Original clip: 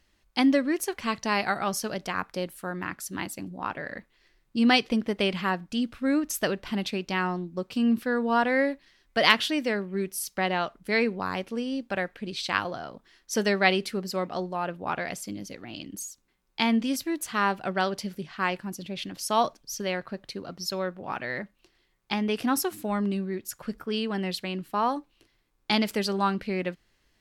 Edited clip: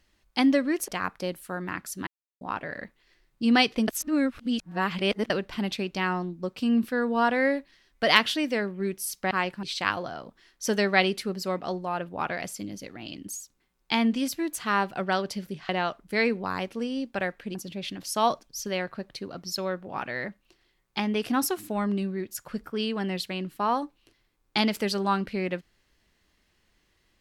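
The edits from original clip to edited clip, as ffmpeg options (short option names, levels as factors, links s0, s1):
-filter_complex "[0:a]asplit=10[s0][s1][s2][s3][s4][s5][s6][s7][s8][s9];[s0]atrim=end=0.882[s10];[s1]atrim=start=2.018:end=3.21,asetpts=PTS-STARTPTS,afade=t=out:st=1.188:d=0.004:c=hsin[s11];[s2]atrim=start=3.21:end=3.55,asetpts=PTS-STARTPTS,volume=0[s12];[s3]atrim=start=3.55:end=5.022,asetpts=PTS-STARTPTS,afade=t=in:d=0.004:c=hsin[s13];[s4]atrim=start=5.018:end=6.442,asetpts=PTS-STARTPTS,areverse[s14];[s5]atrim=start=6.438:end=10.452[s15];[s6]atrim=start=18.368:end=18.692[s16];[s7]atrim=start=12.308:end=18.372[s17];[s8]atrim=start=10.448:end=12.312[s18];[s9]atrim=start=18.688[s19];[s11][s12][s13]concat=n=3:v=0:a=1[s20];[s10][s20]acrossfade=d=0.004:c1=hsin:c2=hsin[s21];[s21][s14]acrossfade=d=0.004:c1=hsin:c2=hsin[s22];[s22][s15]acrossfade=d=0.004:c1=hsin:c2=hsin[s23];[s23][s16]acrossfade=d=0.004:c1=hsin:c2=hsin[s24];[s24][s17]acrossfade=d=0.004:c1=hsin:c2=hsin[s25];[s25][s18]acrossfade=d=0.004:c1=hsin:c2=hsin[s26];[s26][s19]acrossfade=d=0.004:c1=hsin:c2=hsin"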